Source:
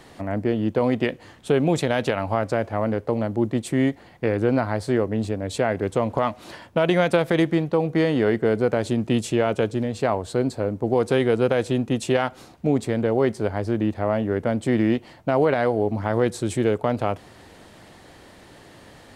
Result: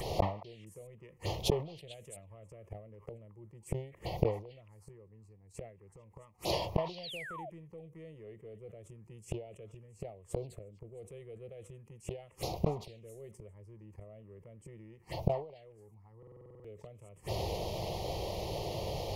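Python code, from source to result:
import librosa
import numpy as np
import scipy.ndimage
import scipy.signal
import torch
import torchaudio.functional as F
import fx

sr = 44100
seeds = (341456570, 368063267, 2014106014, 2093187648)

p1 = fx.dynamic_eq(x, sr, hz=180.0, q=1.0, threshold_db=-34.0, ratio=4.0, max_db=4)
p2 = 10.0 ** (-16.0 / 20.0) * np.tanh(p1 / 10.0 ** (-16.0 / 20.0))
p3 = p1 + (p2 * 10.0 ** (-6.0 / 20.0))
p4 = fx.gate_flip(p3, sr, shuts_db=-17.0, range_db=-42)
p5 = p4 + fx.echo_stepped(p4, sr, ms=222, hz=1300.0, octaves=1.4, feedback_pct=70, wet_db=-11, dry=0)
p6 = fx.rider(p5, sr, range_db=3, speed_s=0.5)
p7 = fx.peak_eq(p6, sr, hz=3700.0, db=-7.0, octaves=0.49)
p8 = fx.fixed_phaser(p7, sr, hz=620.0, stages=4)
p9 = fx.env_phaser(p8, sr, low_hz=500.0, high_hz=1600.0, full_db=-48.5)
p10 = fx.spec_paint(p9, sr, seeds[0], shape='fall', start_s=7.03, length_s=0.47, low_hz=580.0, high_hz=4900.0, level_db=-57.0)
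p11 = fx.buffer_glitch(p10, sr, at_s=(16.18,), block=2048, repeats=9)
p12 = fx.sustainer(p11, sr, db_per_s=120.0)
y = p12 * 10.0 ** (13.0 / 20.0)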